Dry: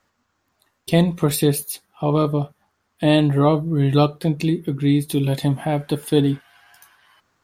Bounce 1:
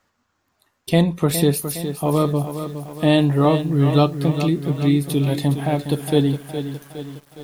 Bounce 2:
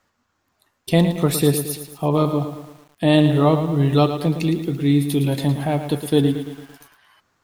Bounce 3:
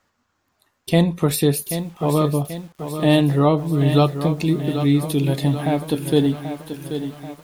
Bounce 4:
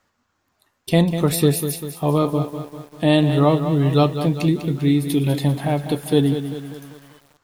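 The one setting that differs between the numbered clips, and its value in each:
bit-crushed delay, time: 413 ms, 112 ms, 784 ms, 197 ms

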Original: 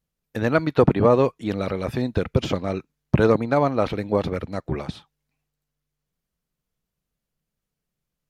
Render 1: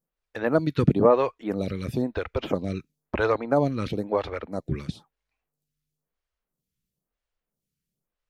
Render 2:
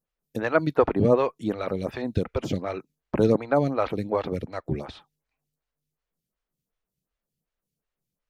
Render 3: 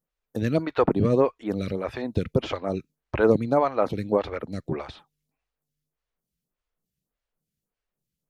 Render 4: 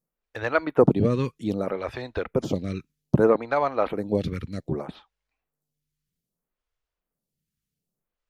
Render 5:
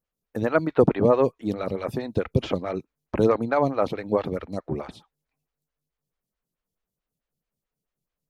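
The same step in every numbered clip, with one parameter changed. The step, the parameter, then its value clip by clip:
lamp-driven phase shifter, rate: 1 Hz, 2.7 Hz, 1.7 Hz, 0.63 Hz, 4.6 Hz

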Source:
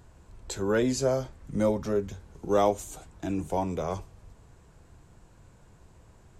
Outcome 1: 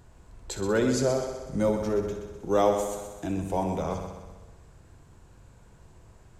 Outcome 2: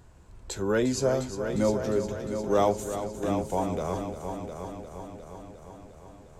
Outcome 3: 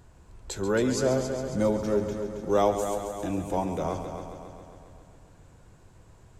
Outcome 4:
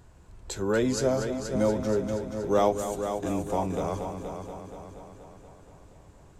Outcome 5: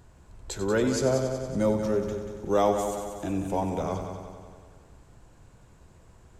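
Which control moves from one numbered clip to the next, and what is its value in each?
multi-head delay, time: 63 ms, 354 ms, 136 ms, 238 ms, 93 ms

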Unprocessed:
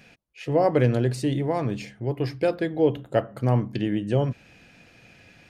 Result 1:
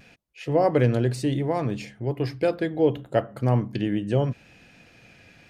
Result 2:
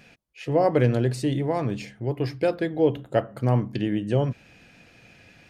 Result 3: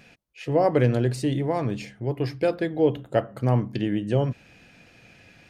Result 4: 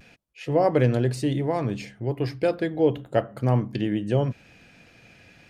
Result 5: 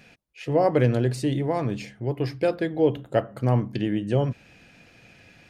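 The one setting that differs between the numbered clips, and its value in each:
vibrato, rate: 0.71 Hz, 5.7 Hz, 3.5 Hz, 0.36 Hz, 12 Hz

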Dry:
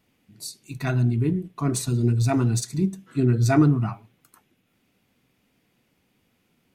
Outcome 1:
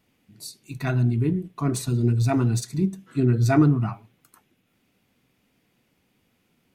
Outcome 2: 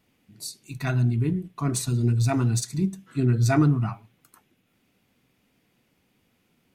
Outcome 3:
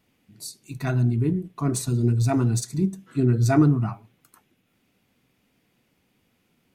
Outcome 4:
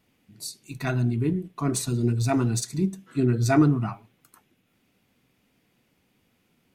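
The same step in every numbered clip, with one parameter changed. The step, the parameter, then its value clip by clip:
dynamic bell, frequency: 7.3 kHz, 390 Hz, 2.8 kHz, 100 Hz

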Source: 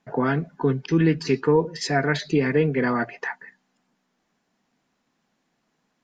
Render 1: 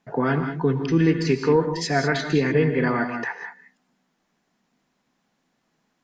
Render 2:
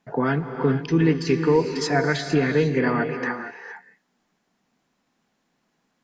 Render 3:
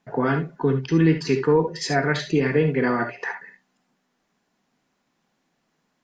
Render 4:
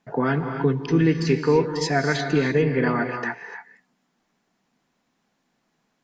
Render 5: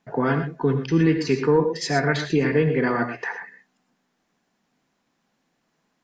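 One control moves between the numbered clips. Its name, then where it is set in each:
gated-style reverb, gate: 220 ms, 490 ms, 90 ms, 320 ms, 140 ms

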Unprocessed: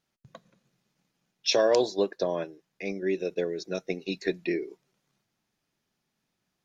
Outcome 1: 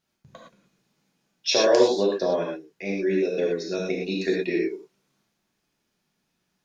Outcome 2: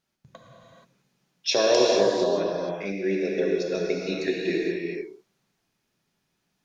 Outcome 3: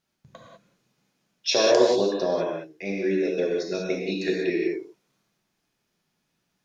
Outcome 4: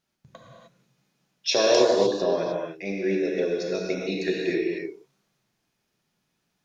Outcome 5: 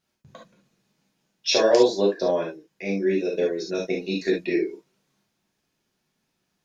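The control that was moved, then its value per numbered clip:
gated-style reverb, gate: 140 ms, 500 ms, 220 ms, 330 ms, 90 ms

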